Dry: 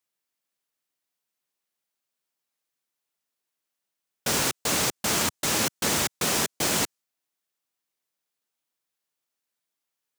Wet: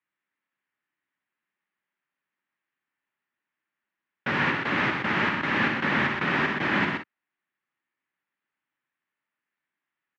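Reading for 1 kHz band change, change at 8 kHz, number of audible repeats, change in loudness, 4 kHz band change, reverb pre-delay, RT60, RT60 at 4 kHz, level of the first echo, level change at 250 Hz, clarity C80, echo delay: +4.0 dB, under -30 dB, 3, -0.5 dB, -7.0 dB, no reverb, no reverb, no reverb, -6.5 dB, +4.0 dB, no reverb, 59 ms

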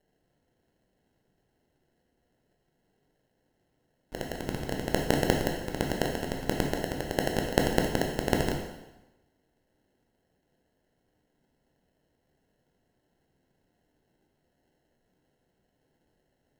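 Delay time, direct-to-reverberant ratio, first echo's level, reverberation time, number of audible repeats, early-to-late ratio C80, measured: no echo, 1.0 dB, no echo, 1.0 s, no echo, 6.5 dB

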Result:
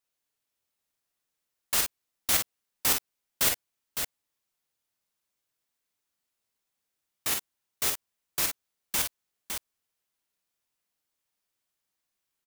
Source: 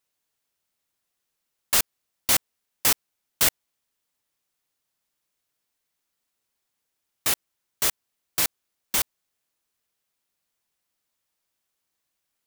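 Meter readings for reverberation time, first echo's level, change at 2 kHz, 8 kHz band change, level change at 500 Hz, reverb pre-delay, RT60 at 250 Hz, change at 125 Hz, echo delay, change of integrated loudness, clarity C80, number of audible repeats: no reverb, -5.5 dB, -3.5 dB, -3.5 dB, -3.5 dB, no reverb, no reverb, -3.5 dB, 46 ms, -5.0 dB, no reverb, 2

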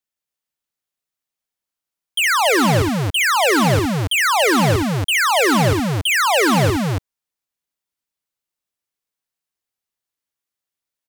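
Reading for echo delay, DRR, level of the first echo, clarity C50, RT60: 65 ms, no reverb, -9.0 dB, no reverb, no reverb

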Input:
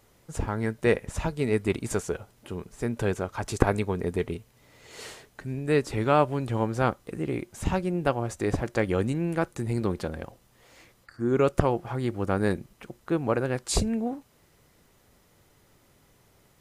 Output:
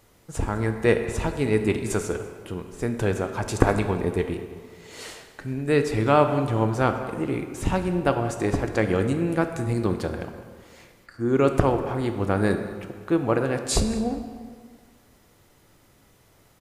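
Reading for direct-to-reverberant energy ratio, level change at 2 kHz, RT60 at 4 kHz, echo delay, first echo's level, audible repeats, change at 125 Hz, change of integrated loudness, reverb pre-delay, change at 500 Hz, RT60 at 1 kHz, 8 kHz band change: 6.5 dB, +3.5 dB, 1.2 s, 204 ms, -18.5 dB, 1, +3.5 dB, +3.5 dB, 3 ms, +3.5 dB, 1.9 s, +3.0 dB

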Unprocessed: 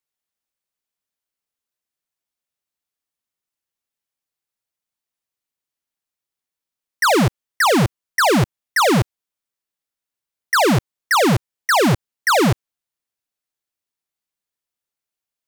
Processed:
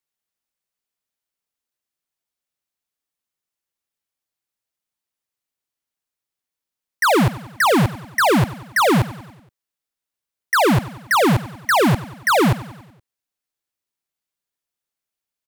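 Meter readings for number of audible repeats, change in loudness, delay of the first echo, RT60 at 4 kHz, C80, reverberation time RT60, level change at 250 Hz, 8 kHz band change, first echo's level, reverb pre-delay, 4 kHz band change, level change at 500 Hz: 4, -0.5 dB, 94 ms, no reverb, no reverb, no reverb, 0.0 dB, -3.5 dB, -16.5 dB, no reverb, -2.5 dB, -0.5 dB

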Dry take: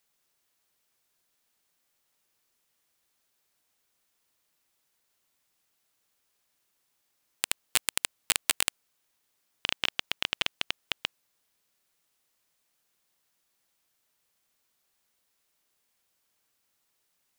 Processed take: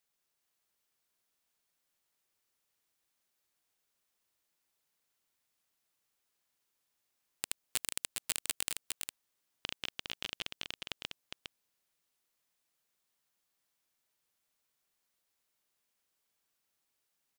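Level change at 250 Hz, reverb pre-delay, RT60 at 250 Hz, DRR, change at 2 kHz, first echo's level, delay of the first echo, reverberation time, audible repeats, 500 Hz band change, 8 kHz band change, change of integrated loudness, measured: -6.0 dB, no reverb, no reverb, no reverb, -11.0 dB, -5.0 dB, 408 ms, no reverb, 1, -8.0 dB, -6.5 dB, -9.0 dB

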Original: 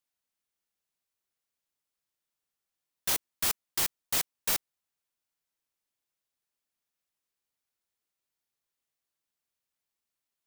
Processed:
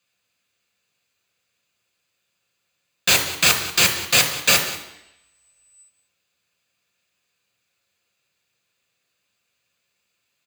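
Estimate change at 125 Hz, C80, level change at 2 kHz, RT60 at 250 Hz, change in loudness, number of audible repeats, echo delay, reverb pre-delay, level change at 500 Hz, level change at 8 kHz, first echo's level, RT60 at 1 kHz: +17.0 dB, 10.0 dB, +19.5 dB, 0.90 s, +12.5 dB, 1, 186 ms, 3 ms, +16.0 dB, +12.0 dB, -16.5 dB, 0.85 s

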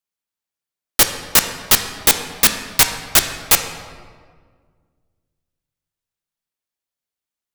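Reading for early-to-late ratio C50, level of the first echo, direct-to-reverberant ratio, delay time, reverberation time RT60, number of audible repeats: 8.0 dB, no echo, 6.0 dB, no echo, 1.7 s, no echo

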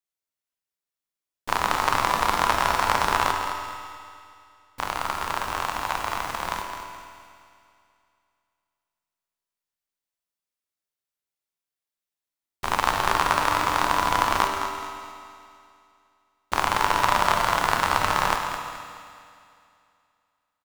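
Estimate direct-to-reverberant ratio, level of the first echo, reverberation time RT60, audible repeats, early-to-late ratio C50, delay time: 2.5 dB, -9.0 dB, 2.4 s, 2, 3.0 dB, 213 ms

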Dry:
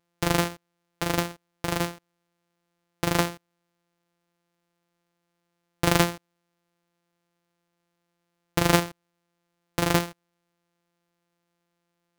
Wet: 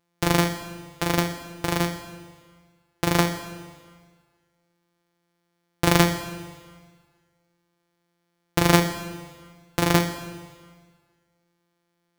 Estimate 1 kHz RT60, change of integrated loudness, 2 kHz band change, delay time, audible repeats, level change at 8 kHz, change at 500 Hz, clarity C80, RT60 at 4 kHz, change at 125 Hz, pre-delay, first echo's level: 1.6 s, +2.5 dB, +3.0 dB, no echo, no echo, +2.0 dB, +2.5 dB, 11.0 dB, 1.6 s, +4.0 dB, 7 ms, no echo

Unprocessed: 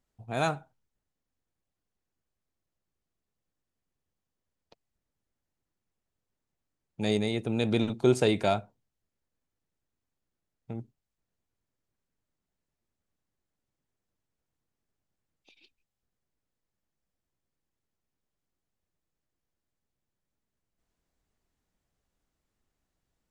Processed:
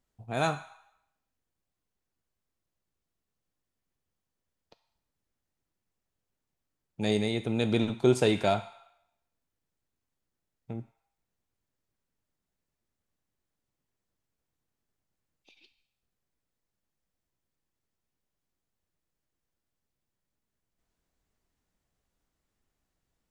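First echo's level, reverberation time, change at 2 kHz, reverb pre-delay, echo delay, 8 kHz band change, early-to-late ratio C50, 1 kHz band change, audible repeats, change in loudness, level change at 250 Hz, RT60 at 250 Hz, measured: no echo, 0.80 s, +0.5 dB, 4 ms, no echo, +0.5 dB, 12.5 dB, 0.0 dB, no echo, 0.0 dB, 0.0 dB, 0.85 s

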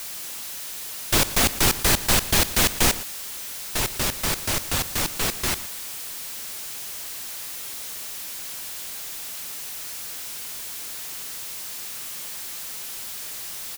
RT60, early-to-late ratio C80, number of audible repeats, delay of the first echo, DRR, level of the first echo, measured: no reverb, no reverb, 1, 116 ms, no reverb, -16.5 dB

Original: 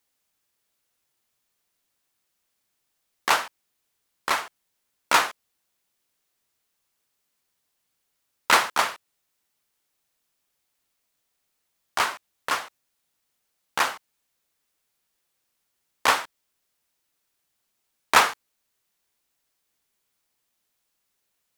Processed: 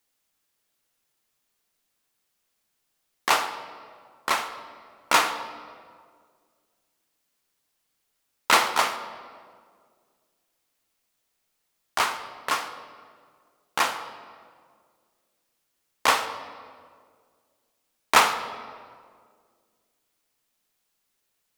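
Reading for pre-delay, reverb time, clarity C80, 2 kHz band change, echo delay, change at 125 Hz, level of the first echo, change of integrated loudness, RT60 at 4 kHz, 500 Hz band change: 3 ms, 2.0 s, 11.5 dB, -1.0 dB, no echo, 0.0 dB, no echo, -1.0 dB, 1.3 s, +1.0 dB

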